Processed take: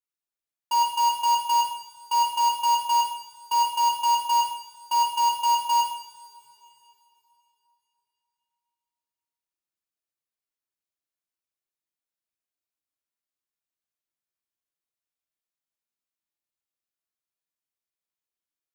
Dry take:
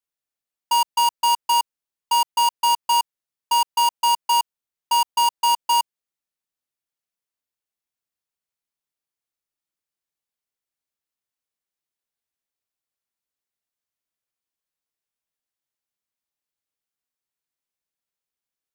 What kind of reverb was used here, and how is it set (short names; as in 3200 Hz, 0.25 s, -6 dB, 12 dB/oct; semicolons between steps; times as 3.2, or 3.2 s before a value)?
two-slope reverb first 0.66 s, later 3.4 s, from -20 dB, DRR -1.5 dB; gain -8.5 dB